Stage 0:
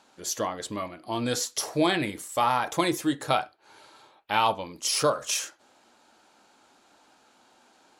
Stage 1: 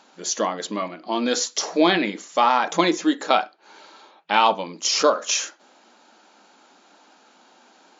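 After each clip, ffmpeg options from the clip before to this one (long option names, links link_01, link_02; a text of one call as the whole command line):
ffmpeg -i in.wav -af "afftfilt=real='re*between(b*sr/4096,170,7300)':imag='im*between(b*sr/4096,170,7300)':win_size=4096:overlap=0.75,volume=6dB" out.wav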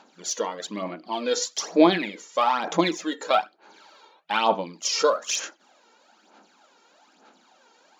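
ffmpeg -i in.wav -af "aphaser=in_gain=1:out_gain=1:delay=2.2:decay=0.6:speed=1.1:type=sinusoidal,volume=-6dB" out.wav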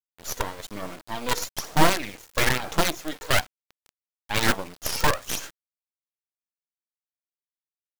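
ffmpeg -i in.wav -af "acrusher=bits=4:dc=4:mix=0:aa=0.000001,aeval=exprs='abs(val(0))':channel_layout=same" out.wav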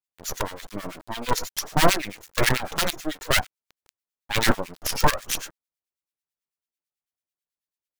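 ffmpeg -i in.wav -filter_complex "[0:a]acrossover=split=1400[link_01][link_02];[link_01]aeval=exprs='val(0)*(1-1/2+1/2*cos(2*PI*9.1*n/s))':channel_layout=same[link_03];[link_02]aeval=exprs='val(0)*(1-1/2-1/2*cos(2*PI*9.1*n/s))':channel_layout=same[link_04];[link_03][link_04]amix=inputs=2:normalize=0,volume=5.5dB" out.wav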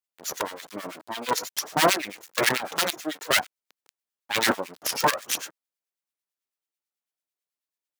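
ffmpeg -i in.wav -af "highpass=250" out.wav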